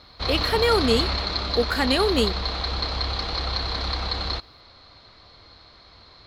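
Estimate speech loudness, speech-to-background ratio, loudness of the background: -23.5 LUFS, 2.5 dB, -26.0 LUFS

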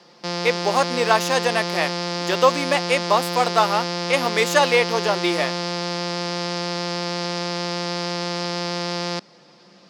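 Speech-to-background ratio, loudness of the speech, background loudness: 4.5 dB, -21.0 LUFS, -25.5 LUFS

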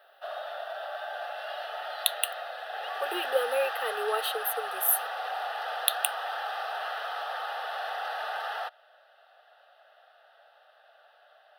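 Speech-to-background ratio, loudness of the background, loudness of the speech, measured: 4.5 dB, -34.5 LUFS, -30.0 LUFS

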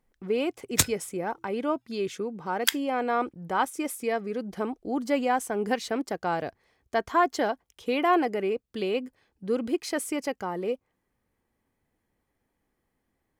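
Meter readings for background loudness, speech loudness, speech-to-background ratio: -27.5 LUFS, -29.0 LUFS, -1.5 dB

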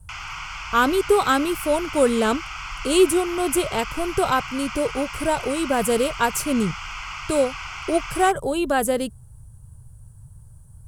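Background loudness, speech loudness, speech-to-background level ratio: -32.5 LUFS, -22.0 LUFS, 10.5 dB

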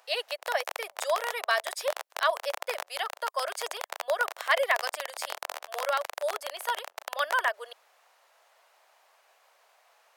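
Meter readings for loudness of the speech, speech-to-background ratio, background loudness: -31.0 LUFS, 8.0 dB, -39.0 LUFS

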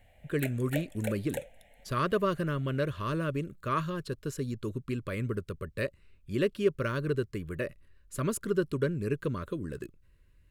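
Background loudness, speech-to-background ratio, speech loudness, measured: -41.0 LUFS, 8.5 dB, -32.5 LUFS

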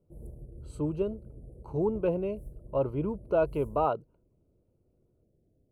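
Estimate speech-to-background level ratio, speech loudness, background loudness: 17.5 dB, -31.0 LUFS, -48.5 LUFS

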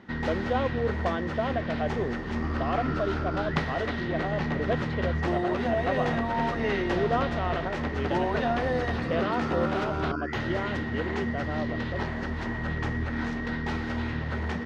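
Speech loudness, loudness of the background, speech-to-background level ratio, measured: -33.0 LUFS, -30.0 LUFS, -3.0 dB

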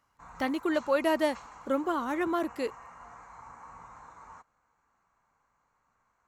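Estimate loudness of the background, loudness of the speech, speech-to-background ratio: -49.0 LUFS, -30.0 LUFS, 19.0 dB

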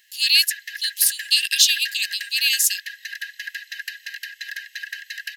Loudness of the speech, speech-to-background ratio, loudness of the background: -18.0 LUFS, 14.5 dB, -32.5 LUFS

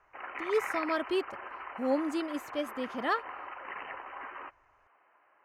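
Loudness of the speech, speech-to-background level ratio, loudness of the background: -33.0 LUFS, 8.0 dB, -41.0 LUFS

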